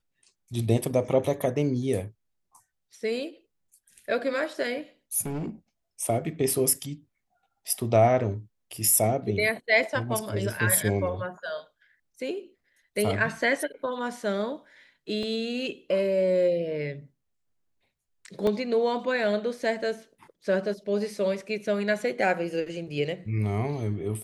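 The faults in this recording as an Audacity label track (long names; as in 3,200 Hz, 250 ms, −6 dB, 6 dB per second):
5.260000	5.500000	clipping −28.5 dBFS
15.230000	15.230000	drop-out 2.2 ms
18.470000	18.470000	drop-out 2.3 ms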